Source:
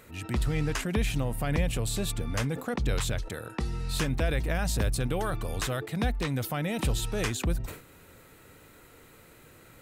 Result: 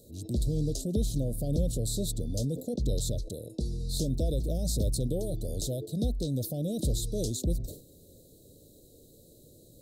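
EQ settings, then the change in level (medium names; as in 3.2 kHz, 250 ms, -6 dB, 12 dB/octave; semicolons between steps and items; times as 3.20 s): Chebyshev band-stop 610–3900 Hz, order 4; 0.0 dB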